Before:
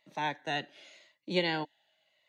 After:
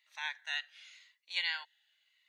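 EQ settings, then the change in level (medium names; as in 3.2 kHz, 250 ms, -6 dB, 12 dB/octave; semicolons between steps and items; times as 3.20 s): high-pass 1.3 kHz 24 dB/octave; 0.0 dB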